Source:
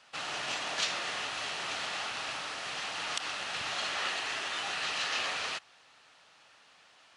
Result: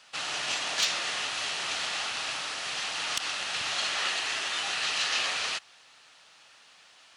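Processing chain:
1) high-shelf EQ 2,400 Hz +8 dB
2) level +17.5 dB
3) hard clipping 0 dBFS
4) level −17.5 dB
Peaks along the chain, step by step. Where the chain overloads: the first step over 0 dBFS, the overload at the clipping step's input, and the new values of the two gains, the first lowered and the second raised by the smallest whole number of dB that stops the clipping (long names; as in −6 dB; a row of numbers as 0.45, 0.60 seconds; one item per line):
−8.0, +9.5, 0.0, −17.5 dBFS
step 2, 9.5 dB
step 2 +7.5 dB, step 4 −7.5 dB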